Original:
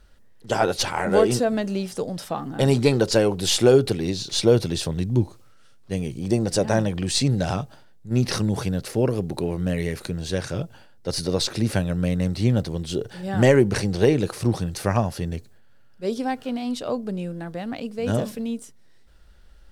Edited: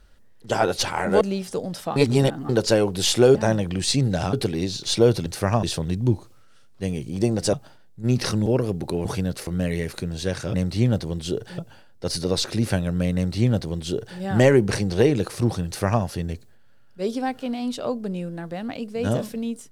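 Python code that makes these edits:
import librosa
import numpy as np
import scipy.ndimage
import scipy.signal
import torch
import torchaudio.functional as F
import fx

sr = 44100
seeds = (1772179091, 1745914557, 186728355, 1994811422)

y = fx.edit(x, sr, fx.cut(start_s=1.21, length_s=0.44),
    fx.reverse_span(start_s=2.4, length_s=0.53),
    fx.move(start_s=6.62, length_s=0.98, to_s=3.79),
    fx.move(start_s=8.53, length_s=0.42, to_s=9.54),
    fx.duplicate(start_s=12.18, length_s=1.04, to_s=10.61),
    fx.duplicate(start_s=14.69, length_s=0.37, to_s=4.72), tone=tone)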